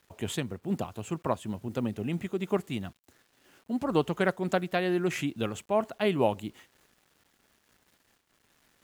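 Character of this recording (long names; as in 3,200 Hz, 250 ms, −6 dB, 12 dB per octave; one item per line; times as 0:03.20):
a quantiser's noise floor 10 bits, dither none
amplitude modulation by smooth noise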